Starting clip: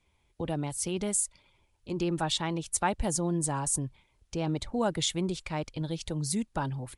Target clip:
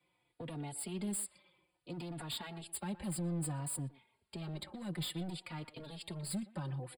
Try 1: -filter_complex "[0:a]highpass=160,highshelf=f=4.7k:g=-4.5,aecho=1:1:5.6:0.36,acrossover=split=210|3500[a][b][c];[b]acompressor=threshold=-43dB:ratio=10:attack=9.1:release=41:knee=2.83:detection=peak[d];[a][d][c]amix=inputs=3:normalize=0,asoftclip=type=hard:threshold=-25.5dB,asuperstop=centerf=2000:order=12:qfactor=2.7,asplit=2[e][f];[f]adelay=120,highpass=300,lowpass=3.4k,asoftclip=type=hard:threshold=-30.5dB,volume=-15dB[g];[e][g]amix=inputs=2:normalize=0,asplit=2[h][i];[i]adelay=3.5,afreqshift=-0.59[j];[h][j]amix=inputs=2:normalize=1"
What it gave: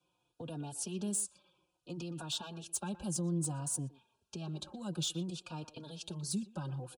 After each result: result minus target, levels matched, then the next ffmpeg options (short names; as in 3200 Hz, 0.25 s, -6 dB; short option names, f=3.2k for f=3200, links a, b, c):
hard clip: distortion -12 dB; 2000 Hz band -5.5 dB
-filter_complex "[0:a]highpass=160,highshelf=f=4.7k:g=-4.5,aecho=1:1:5.6:0.36,acrossover=split=210|3500[a][b][c];[b]acompressor=threshold=-43dB:ratio=10:attack=9.1:release=41:knee=2.83:detection=peak[d];[a][d][c]amix=inputs=3:normalize=0,asoftclip=type=hard:threshold=-33dB,asuperstop=centerf=2000:order=12:qfactor=2.7,asplit=2[e][f];[f]adelay=120,highpass=300,lowpass=3.4k,asoftclip=type=hard:threshold=-30.5dB,volume=-15dB[g];[e][g]amix=inputs=2:normalize=0,asplit=2[h][i];[i]adelay=3.5,afreqshift=-0.59[j];[h][j]amix=inputs=2:normalize=1"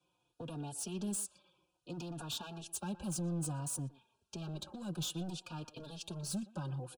2000 Hz band -3.5 dB
-filter_complex "[0:a]highpass=160,highshelf=f=4.7k:g=-4.5,aecho=1:1:5.6:0.36,acrossover=split=210|3500[a][b][c];[b]acompressor=threshold=-43dB:ratio=10:attack=9.1:release=41:knee=2.83:detection=peak[d];[a][d][c]amix=inputs=3:normalize=0,asoftclip=type=hard:threshold=-33dB,asuperstop=centerf=6100:order=12:qfactor=2.7,asplit=2[e][f];[f]adelay=120,highpass=300,lowpass=3.4k,asoftclip=type=hard:threshold=-30.5dB,volume=-15dB[g];[e][g]amix=inputs=2:normalize=0,asplit=2[h][i];[i]adelay=3.5,afreqshift=-0.59[j];[h][j]amix=inputs=2:normalize=1"